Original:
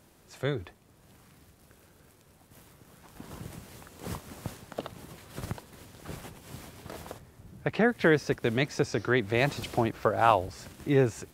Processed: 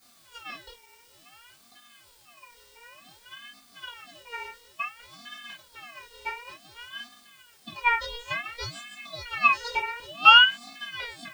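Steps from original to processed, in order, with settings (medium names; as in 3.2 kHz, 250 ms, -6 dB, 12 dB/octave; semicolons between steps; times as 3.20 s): treble shelf 2.8 kHz -5 dB; waveshaping leveller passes 2; slow attack 364 ms; in parallel at +1 dB: compression, threshold -39 dBFS, peak gain reduction 20 dB; on the sum: bit crusher 9-bit; vocoder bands 32, square 237 Hz; added noise blue -62 dBFS; LFO high-pass square 2 Hz 730–1700 Hz; reverberation, pre-delay 3 ms, DRR -5 dB; ring modulator with a swept carrier 2 kHz, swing 20%, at 0.56 Hz; trim -2.5 dB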